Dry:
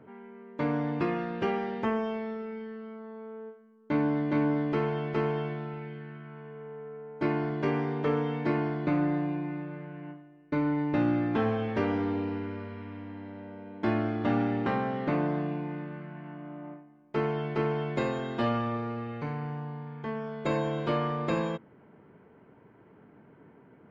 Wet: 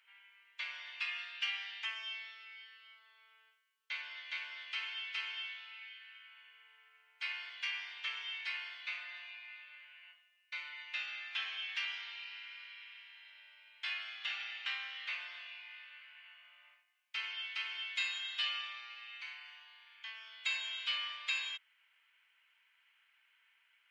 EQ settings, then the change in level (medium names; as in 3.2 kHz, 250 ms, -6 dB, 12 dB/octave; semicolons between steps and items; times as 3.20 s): ladder high-pass 2.4 kHz, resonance 45%; +13.0 dB